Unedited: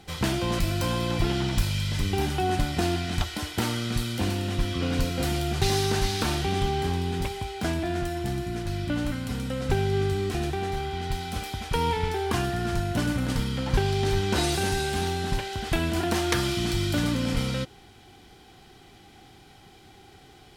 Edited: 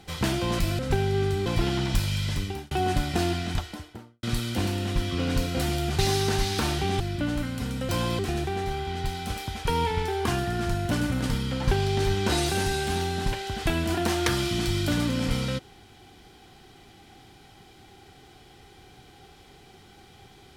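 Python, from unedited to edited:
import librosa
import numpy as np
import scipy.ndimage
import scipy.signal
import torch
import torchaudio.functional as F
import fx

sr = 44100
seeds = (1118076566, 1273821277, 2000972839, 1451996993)

y = fx.studio_fade_out(x, sr, start_s=2.97, length_s=0.89)
y = fx.edit(y, sr, fx.swap(start_s=0.79, length_s=0.3, other_s=9.58, other_length_s=0.67),
    fx.fade_out_span(start_s=1.93, length_s=0.41),
    fx.cut(start_s=6.63, length_s=2.06), tone=tone)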